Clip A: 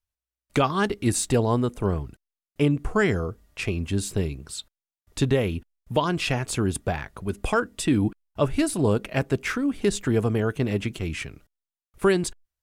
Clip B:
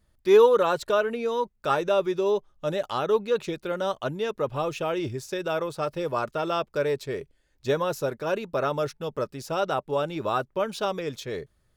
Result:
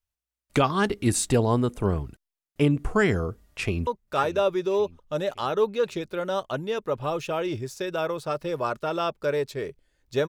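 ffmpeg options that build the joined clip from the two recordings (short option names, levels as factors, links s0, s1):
-filter_complex "[0:a]apad=whole_dur=10.28,atrim=end=10.28,atrim=end=3.872[s0];[1:a]atrim=start=1.388:end=7.8[s1];[s0][s1]acrossfade=d=0.004:c1=hsin:c2=hsin,asplit=2[s2][s3];[s3]afade=t=in:st=3.51:d=0.01,afade=t=out:st=3.87:d=0.01,aecho=0:1:560|1120|1680|2240:0.158489|0.0713202|0.0320941|0.0144423[s4];[s2][s4]amix=inputs=2:normalize=0"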